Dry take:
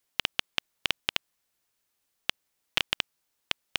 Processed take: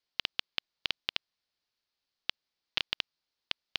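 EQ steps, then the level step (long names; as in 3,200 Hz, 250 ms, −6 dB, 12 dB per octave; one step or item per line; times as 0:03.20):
high shelf with overshoot 6,600 Hz −14 dB, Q 3
−8.0 dB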